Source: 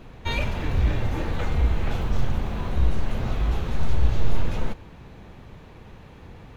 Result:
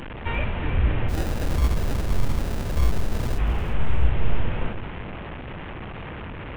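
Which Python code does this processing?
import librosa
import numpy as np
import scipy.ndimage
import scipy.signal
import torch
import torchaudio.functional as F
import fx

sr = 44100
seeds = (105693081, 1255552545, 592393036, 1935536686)

y = fx.delta_mod(x, sr, bps=16000, step_db=-29.0)
y = fx.sample_hold(y, sr, seeds[0], rate_hz=1100.0, jitter_pct=0, at=(1.08, 3.37), fade=0.02)
y = fx.echo_feedback(y, sr, ms=350, feedback_pct=38, wet_db=-12)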